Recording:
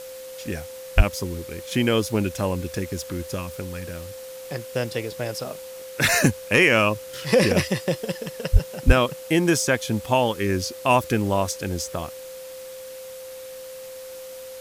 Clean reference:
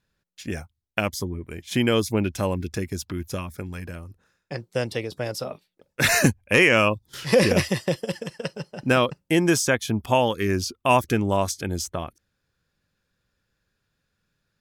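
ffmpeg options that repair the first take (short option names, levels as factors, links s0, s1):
-filter_complex "[0:a]adeclick=t=4,bandreject=f=520:w=30,asplit=3[s0][s1][s2];[s0]afade=t=out:st=0.96:d=0.02[s3];[s1]highpass=f=140:w=0.5412,highpass=f=140:w=1.3066,afade=t=in:st=0.96:d=0.02,afade=t=out:st=1.08:d=0.02[s4];[s2]afade=t=in:st=1.08:d=0.02[s5];[s3][s4][s5]amix=inputs=3:normalize=0,asplit=3[s6][s7][s8];[s6]afade=t=out:st=8.52:d=0.02[s9];[s7]highpass=f=140:w=0.5412,highpass=f=140:w=1.3066,afade=t=in:st=8.52:d=0.02,afade=t=out:st=8.64:d=0.02[s10];[s8]afade=t=in:st=8.64:d=0.02[s11];[s9][s10][s11]amix=inputs=3:normalize=0,asplit=3[s12][s13][s14];[s12]afade=t=out:st=8.86:d=0.02[s15];[s13]highpass=f=140:w=0.5412,highpass=f=140:w=1.3066,afade=t=in:st=8.86:d=0.02,afade=t=out:st=8.98:d=0.02[s16];[s14]afade=t=in:st=8.98:d=0.02[s17];[s15][s16][s17]amix=inputs=3:normalize=0,afwtdn=0.0063"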